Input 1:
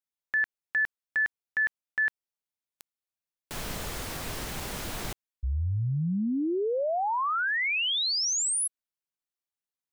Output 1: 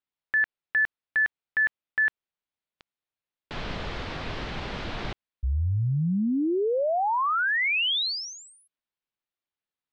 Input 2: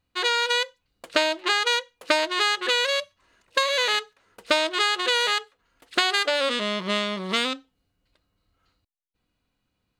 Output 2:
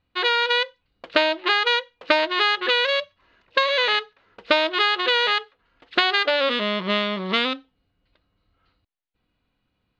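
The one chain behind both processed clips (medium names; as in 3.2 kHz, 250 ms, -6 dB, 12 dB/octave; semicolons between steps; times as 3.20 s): low-pass 4.1 kHz 24 dB/octave; trim +3 dB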